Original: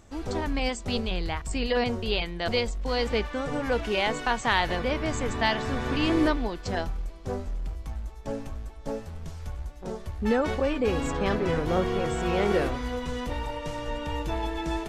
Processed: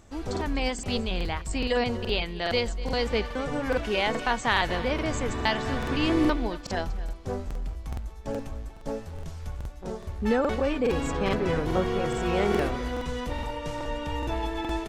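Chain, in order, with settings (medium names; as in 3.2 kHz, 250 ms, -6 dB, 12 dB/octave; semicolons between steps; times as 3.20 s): delay 245 ms -17 dB; crackling interface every 0.42 s, samples 2048, repeat, from 0.32 s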